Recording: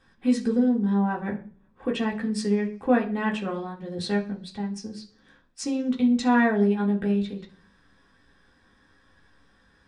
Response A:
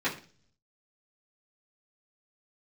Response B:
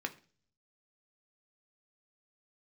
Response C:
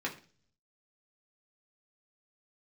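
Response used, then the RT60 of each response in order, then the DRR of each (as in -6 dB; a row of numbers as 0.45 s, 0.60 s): C; 0.40 s, 0.40 s, 0.40 s; -11.0 dB, 5.0 dB, -3.0 dB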